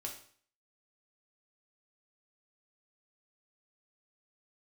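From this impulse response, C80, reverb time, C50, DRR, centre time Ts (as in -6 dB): 11.5 dB, 0.50 s, 7.5 dB, -0.5 dB, 22 ms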